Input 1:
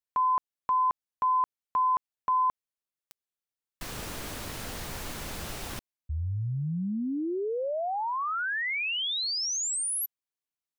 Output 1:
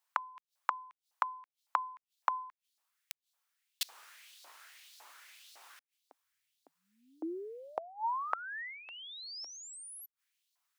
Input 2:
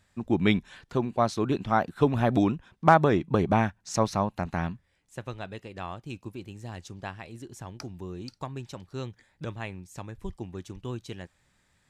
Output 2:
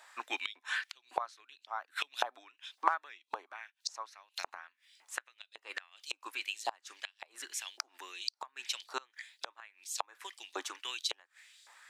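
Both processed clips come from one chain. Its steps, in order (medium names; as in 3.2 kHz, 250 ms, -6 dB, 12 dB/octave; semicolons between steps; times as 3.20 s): LFO high-pass saw up 1.8 Hz 780–4500 Hz; elliptic high-pass 270 Hz, stop band 40 dB; inverted gate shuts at -31 dBFS, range -28 dB; trim +10.5 dB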